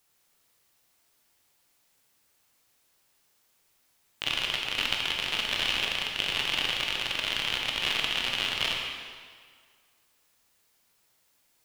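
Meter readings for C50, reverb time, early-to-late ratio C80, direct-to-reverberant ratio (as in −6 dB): 2.0 dB, 1.9 s, 3.5 dB, −0.5 dB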